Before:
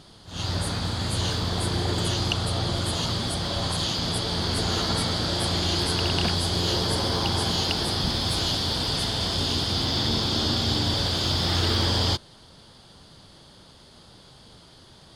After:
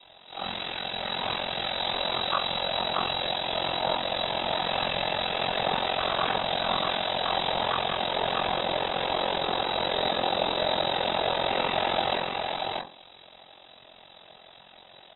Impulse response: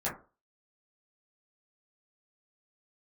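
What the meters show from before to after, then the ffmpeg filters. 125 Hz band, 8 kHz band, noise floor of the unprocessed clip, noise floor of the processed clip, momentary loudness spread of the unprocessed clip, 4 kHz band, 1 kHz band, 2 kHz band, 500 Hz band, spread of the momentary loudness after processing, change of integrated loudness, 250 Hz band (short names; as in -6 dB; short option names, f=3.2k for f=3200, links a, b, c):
-16.5 dB, under -40 dB, -51 dBFS, -52 dBFS, 4 LU, -3.5 dB, +5.5 dB, +2.5 dB, +3.0 dB, 4 LU, -3.0 dB, -9.0 dB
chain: -filter_complex "[0:a]highpass=f=97:w=0.5412,highpass=f=97:w=1.3066,lowpass=f=3.4k:t=q:w=0.5098,lowpass=f=3.4k:t=q:w=0.6013,lowpass=f=3.4k:t=q:w=0.9,lowpass=f=3.4k:t=q:w=2.563,afreqshift=-4000,acrossover=split=3100[a][b];[b]acompressor=threshold=-35dB:ratio=4:attack=1:release=60[c];[a][c]amix=inputs=2:normalize=0,aecho=1:1:631:0.668[d];[1:a]atrim=start_sample=2205[e];[d][e]afir=irnorm=-1:irlink=0,aeval=exprs='val(0)*sin(2*PI*22*n/s)':c=same"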